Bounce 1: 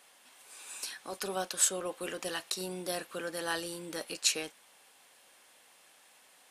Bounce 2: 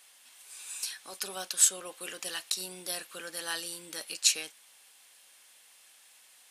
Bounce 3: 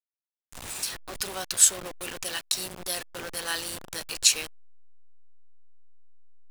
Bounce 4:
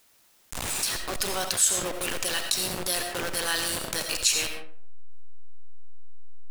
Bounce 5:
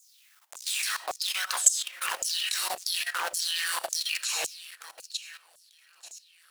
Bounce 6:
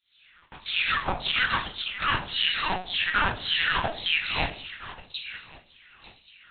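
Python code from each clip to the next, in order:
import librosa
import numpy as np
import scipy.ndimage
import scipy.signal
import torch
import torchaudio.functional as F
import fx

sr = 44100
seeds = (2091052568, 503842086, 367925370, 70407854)

y1 = fx.tilt_shelf(x, sr, db=-7.0, hz=1500.0)
y1 = F.gain(torch.from_numpy(y1), -2.0).numpy()
y2 = fx.delta_hold(y1, sr, step_db=-36.5)
y2 = F.gain(torch.from_numpy(y2), 4.5).numpy()
y3 = fx.rev_freeverb(y2, sr, rt60_s=0.64, hf_ratio=0.55, predelay_ms=45, drr_db=8.5)
y3 = fx.env_flatten(y3, sr, amount_pct=50)
y3 = F.gain(torch.from_numpy(y3), -5.0).numpy()
y4 = fx.echo_alternate(y3, sr, ms=445, hz=900.0, feedback_pct=68, wet_db=-13)
y4 = fx.filter_lfo_highpass(y4, sr, shape='saw_down', hz=1.8, low_hz=600.0, high_hz=7300.0, q=4.3)
y4 = fx.level_steps(y4, sr, step_db=15)
y5 = y4 + 10.0 ** (-22.5 / 20.0) * np.pad(y4, (int(1129 * sr / 1000.0), 0))[:len(y4)]
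y5 = fx.room_shoebox(y5, sr, seeds[0], volume_m3=30.0, walls='mixed', distance_m=0.54)
y5 = fx.lpc_vocoder(y5, sr, seeds[1], excitation='pitch_kept', order=8)
y5 = F.gain(torch.from_numpy(y5), 4.5).numpy()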